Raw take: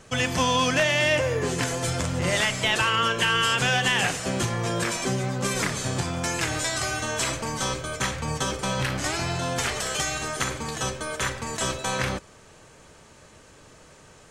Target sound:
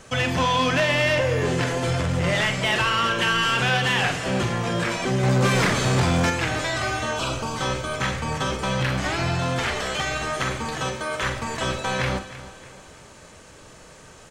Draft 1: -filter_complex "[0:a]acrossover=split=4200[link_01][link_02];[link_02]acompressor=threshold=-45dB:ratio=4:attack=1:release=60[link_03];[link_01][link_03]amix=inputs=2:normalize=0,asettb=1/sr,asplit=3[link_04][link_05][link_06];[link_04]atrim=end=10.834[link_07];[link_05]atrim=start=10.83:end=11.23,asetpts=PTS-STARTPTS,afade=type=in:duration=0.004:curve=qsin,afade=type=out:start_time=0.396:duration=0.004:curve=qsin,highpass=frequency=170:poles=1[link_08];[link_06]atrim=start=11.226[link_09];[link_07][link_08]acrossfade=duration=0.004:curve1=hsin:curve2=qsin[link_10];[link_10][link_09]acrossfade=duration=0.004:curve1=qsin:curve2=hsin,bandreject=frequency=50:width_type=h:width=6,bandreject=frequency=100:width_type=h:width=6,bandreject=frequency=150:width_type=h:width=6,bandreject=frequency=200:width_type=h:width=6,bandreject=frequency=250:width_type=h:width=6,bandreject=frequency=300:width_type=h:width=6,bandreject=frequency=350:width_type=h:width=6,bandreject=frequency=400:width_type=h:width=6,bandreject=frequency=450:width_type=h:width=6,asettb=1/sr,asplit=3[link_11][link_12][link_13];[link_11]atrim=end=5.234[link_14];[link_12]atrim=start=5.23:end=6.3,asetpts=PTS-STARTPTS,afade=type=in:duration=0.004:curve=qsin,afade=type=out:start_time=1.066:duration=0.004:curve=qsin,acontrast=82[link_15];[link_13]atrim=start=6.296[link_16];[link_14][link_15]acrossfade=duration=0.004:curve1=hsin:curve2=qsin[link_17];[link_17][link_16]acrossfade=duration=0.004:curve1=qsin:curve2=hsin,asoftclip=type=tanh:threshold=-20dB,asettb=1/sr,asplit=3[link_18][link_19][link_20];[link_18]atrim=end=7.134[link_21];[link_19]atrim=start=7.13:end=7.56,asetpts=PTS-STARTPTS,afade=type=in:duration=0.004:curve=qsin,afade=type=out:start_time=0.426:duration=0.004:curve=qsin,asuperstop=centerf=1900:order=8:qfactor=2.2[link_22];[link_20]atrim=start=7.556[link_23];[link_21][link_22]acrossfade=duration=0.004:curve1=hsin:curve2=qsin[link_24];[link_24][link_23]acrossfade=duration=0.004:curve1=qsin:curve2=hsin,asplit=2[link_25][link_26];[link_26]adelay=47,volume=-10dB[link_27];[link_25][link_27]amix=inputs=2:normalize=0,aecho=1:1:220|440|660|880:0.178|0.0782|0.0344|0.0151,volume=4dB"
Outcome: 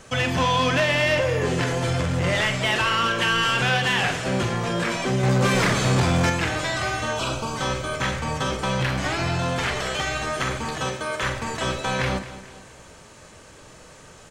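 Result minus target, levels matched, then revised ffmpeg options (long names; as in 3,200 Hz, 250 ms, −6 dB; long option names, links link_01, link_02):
echo 91 ms early
-filter_complex "[0:a]acrossover=split=4200[link_01][link_02];[link_02]acompressor=threshold=-45dB:ratio=4:attack=1:release=60[link_03];[link_01][link_03]amix=inputs=2:normalize=0,asettb=1/sr,asplit=3[link_04][link_05][link_06];[link_04]atrim=end=10.834[link_07];[link_05]atrim=start=10.83:end=11.23,asetpts=PTS-STARTPTS,afade=type=in:duration=0.004:curve=qsin,afade=type=out:start_time=0.396:duration=0.004:curve=qsin,highpass=frequency=170:poles=1[link_08];[link_06]atrim=start=11.226[link_09];[link_07][link_08]acrossfade=duration=0.004:curve1=hsin:curve2=qsin[link_10];[link_10][link_09]acrossfade=duration=0.004:curve1=qsin:curve2=hsin,bandreject=frequency=50:width_type=h:width=6,bandreject=frequency=100:width_type=h:width=6,bandreject=frequency=150:width_type=h:width=6,bandreject=frequency=200:width_type=h:width=6,bandreject=frequency=250:width_type=h:width=6,bandreject=frequency=300:width_type=h:width=6,bandreject=frequency=350:width_type=h:width=6,bandreject=frequency=400:width_type=h:width=6,bandreject=frequency=450:width_type=h:width=6,asettb=1/sr,asplit=3[link_11][link_12][link_13];[link_11]atrim=end=5.234[link_14];[link_12]atrim=start=5.23:end=6.3,asetpts=PTS-STARTPTS,afade=type=in:duration=0.004:curve=qsin,afade=type=out:start_time=1.066:duration=0.004:curve=qsin,acontrast=82[link_15];[link_13]atrim=start=6.296[link_16];[link_14][link_15]acrossfade=duration=0.004:curve1=hsin:curve2=qsin[link_17];[link_17][link_16]acrossfade=duration=0.004:curve1=qsin:curve2=hsin,asoftclip=type=tanh:threshold=-20dB,asettb=1/sr,asplit=3[link_18][link_19][link_20];[link_18]atrim=end=7.134[link_21];[link_19]atrim=start=7.13:end=7.56,asetpts=PTS-STARTPTS,afade=type=in:duration=0.004:curve=qsin,afade=type=out:start_time=0.426:duration=0.004:curve=qsin,asuperstop=centerf=1900:order=8:qfactor=2.2[link_22];[link_20]atrim=start=7.556[link_23];[link_21][link_22]acrossfade=duration=0.004:curve1=hsin:curve2=qsin[link_24];[link_24][link_23]acrossfade=duration=0.004:curve1=qsin:curve2=hsin,asplit=2[link_25][link_26];[link_26]adelay=47,volume=-10dB[link_27];[link_25][link_27]amix=inputs=2:normalize=0,aecho=1:1:311|622|933|1244:0.178|0.0782|0.0344|0.0151,volume=4dB"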